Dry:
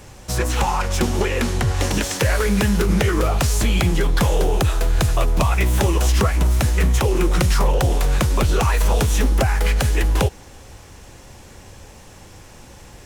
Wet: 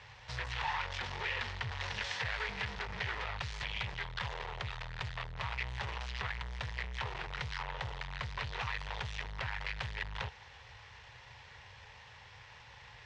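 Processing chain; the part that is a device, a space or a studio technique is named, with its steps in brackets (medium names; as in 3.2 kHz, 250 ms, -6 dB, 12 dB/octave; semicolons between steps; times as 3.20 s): scooped metal amplifier (valve stage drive 26 dB, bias 0.5; cabinet simulation 85–4000 Hz, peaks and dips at 120 Hz +6 dB, 180 Hz -3 dB, 440 Hz +6 dB, 930 Hz +7 dB, 1.9 kHz +6 dB; amplifier tone stack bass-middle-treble 10-0-10)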